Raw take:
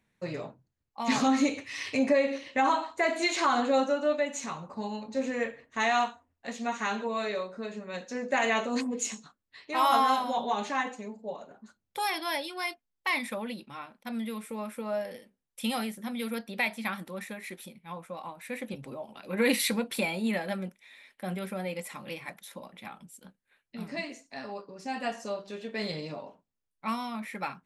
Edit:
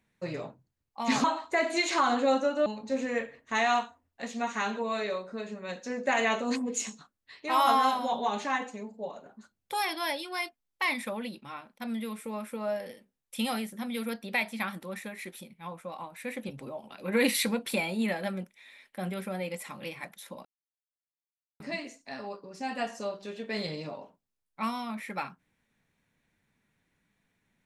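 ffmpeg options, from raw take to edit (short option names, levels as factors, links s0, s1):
-filter_complex "[0:a]asplit=5[s0][s1][s2][s3][s4];[s0]atrim=end=1.242[s5];[s1]atrim=start=2.698:end=4.122[s6];[s2]atrim=start=4.908:end=22.7,asetpts=PTS-STARTPTS,afade=t=out:st=17.788:d=0.004:c=hsin[s7];[s3]atrim=start=22.7:end=23.85,asetpts=PTS-STARTPTS,volume=0[s8];[s4]atrim=start=23.85,asetpts=PTS-STARTPTS,afade=t=in:d=0.004:c=hsin[s9];[s5][s6]acrossfade=d=0.004:c1=hsin:c2=hsin[s10];[s7][s8][s9]concat=n=3:v=0:a=1[s11];[s10][s11]acrossfade=d=0.004:c1=hsin:c2=hsin"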